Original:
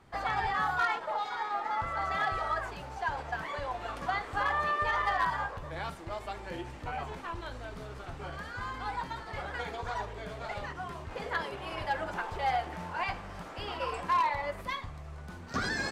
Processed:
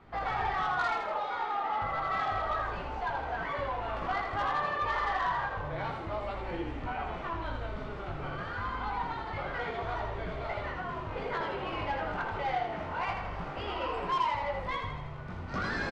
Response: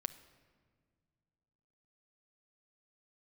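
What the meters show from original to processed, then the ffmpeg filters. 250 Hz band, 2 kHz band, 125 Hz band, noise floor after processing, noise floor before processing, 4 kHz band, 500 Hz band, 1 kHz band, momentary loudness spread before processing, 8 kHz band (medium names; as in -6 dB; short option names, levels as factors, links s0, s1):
+3.0 dB, -1.0 dB, +2.5 dB, -39 dBFS, -45 dBFS, -1.0 dB, +2.5 dB, +0.5 dB, 12 LU, no reading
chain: -filter_complex "[0:a]lowpass=3000,bandreject=f=1700:w=15,asplit=2[s0][s1];[s1]acompressor=threshold=0.0126:ratio=6,volume=1.26[s2];[s0][s2]amix=inputs=2:normalize=0,flanger=delay=17.5:depth=3.8:speed=0.29,asoftclip=type=tanh:threshold=0.0531,asplit=2[s3][s4];[s4]asplit=7[s5][s6][s7][s8][s9][s10][s11];[s5]adelay=81,afreqshift=-30,volume=0.562[s12];[s6]adelay=162,afreqshift=-60,volume=0.316[s13];[s7]adelay=243,afreqshift=-90,volume=0.176[s14];[s8]adelay=324,afreqshift=-120,volume=0.0989[s15];[s9]adelay=405,afreqshift=-150,volume=0.0556[s16];[s10]adelay=486,afreqshift=-180,volume=0.0309[s17];[s11]adelay=567,afreqshift=-210,volume=0.0174[s18];[s12][s13][s14][s15][s16][s17][s18]amix=inputs=7:normalize=0[s19];[s3][s19]amix=inputs=2:normalize=0"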